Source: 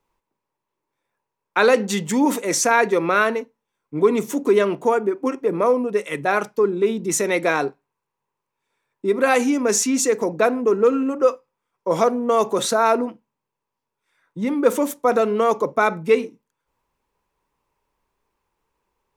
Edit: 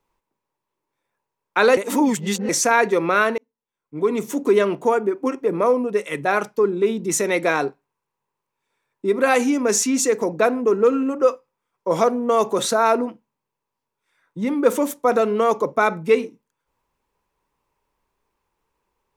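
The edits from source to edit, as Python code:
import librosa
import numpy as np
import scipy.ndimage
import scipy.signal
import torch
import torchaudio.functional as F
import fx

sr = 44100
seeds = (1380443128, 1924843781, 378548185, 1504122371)

y = fx.edit(x, sr, fx.reverse_span(start_s=1.77, length_s=0.72),
    fx.fade_in_span(start_s=3.38, length_s=1.05), tone=tone)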